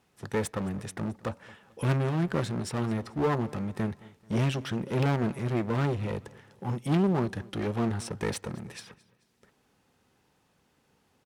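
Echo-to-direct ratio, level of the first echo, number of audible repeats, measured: −21.0 dB, −21.5 dB, 2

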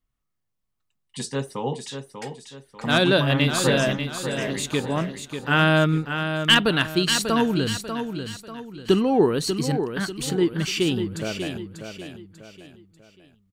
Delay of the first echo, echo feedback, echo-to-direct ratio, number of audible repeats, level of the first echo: 592 ms, 39%, −7.5 dB, 4, −8.0 dB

